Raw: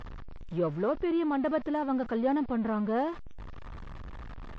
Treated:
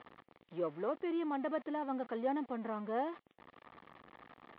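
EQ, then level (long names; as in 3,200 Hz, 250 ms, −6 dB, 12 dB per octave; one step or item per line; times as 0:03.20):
loudspeaker in its box 400–3,200 Hz, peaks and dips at 410 Hz −4 dB, 600 Hz −5 dB, 970 Hz −5 dB, 1,500 Hz −9 dB, 2,600 Hz −5 dB
−1.5 dB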